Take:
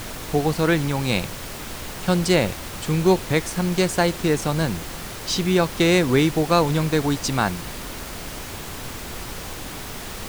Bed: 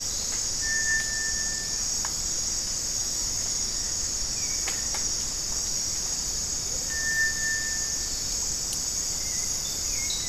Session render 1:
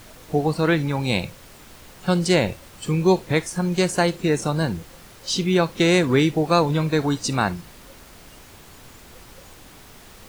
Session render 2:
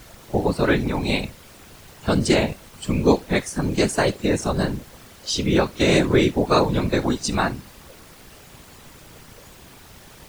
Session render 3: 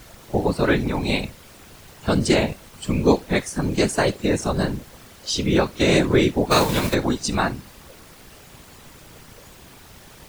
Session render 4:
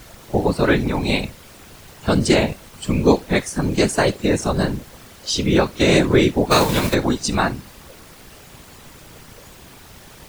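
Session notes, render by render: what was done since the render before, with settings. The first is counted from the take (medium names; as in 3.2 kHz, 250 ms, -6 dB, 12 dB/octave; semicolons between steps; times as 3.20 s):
noise print and reduce 12 dB
whisper effect
6.50–6.93 s: formants flattened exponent 0.6
trim +2.5 dB; peak limiter -2 dBFS, peak gain reduction 1.5 dB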